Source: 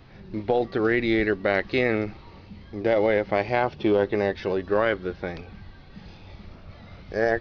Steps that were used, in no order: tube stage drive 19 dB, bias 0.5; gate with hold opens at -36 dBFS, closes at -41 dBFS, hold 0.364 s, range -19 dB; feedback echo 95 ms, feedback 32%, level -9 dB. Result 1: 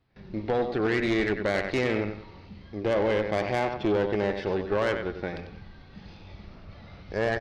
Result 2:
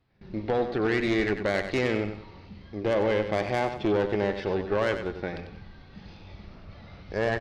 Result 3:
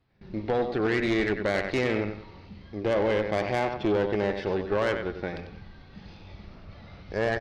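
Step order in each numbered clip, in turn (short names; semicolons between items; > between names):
feedback echo > gate with hold > tube stage; tube stage > feedback echo > gate with hold; feedback echo > tube stage > gate with hold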